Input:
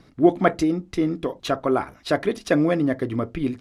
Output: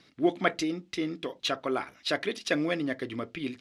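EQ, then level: frequency weighting D; -8.5 dB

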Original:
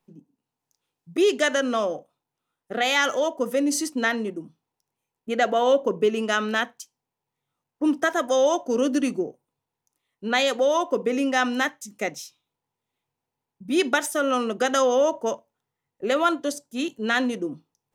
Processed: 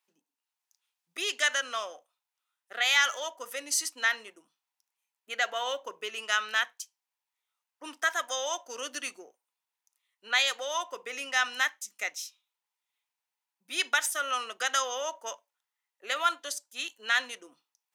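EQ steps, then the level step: high-pass 1.4 kHz 12 dB/octave; 0.0 dB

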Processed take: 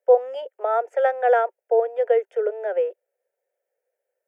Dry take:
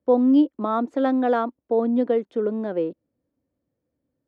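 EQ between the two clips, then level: steep high-pass 390 Hz 72 dB/octave; peaking EQ 1.5 kHz +2 dB; static phaser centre 1.1 kHz, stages 6; +5.5 dB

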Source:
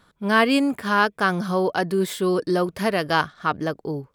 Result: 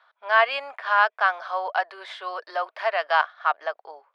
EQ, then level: elliptic high-pass 650 Hz, stop band 80 dB; brick-wall FIR low-pass 11 kHz; distance through air 290 m; +3.0 dB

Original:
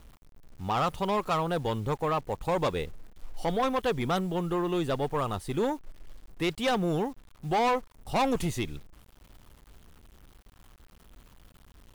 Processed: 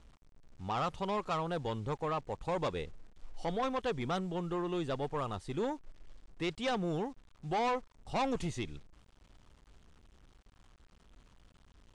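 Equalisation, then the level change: low-pass 8.2 kHz 24 dB/octave; -6.5 dB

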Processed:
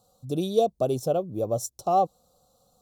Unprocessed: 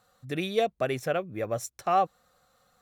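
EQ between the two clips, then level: Butterworth band-stop 1.9 kHz, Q 0.55; +4.5 dB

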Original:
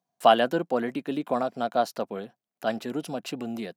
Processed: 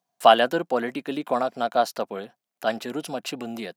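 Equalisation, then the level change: bass shelf 390 Hz -8 dB; +5.0 dB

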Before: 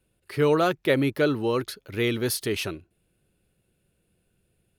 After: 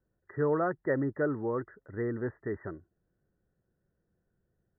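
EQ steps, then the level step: brick-wall FIR low-pass 2 kHz; -7.0 dB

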